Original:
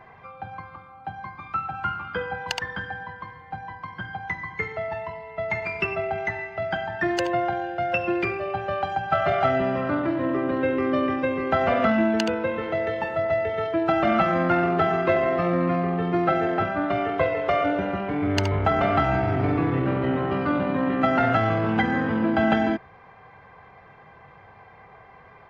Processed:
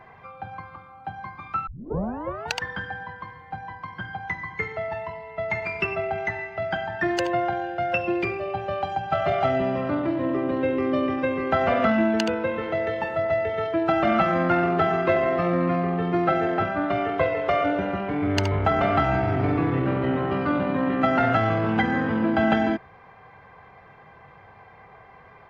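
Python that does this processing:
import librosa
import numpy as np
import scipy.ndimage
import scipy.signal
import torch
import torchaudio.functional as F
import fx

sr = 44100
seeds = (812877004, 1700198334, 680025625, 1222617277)

y = fx.peak_eq(x, sr, hz=1500.0, db=-6.0, octaves=0.68, at=(8.01, 11.18))
y = fx.edit(y, sr, fx.tape_start(start_s=1.67, length_s=0.89), tone=tone)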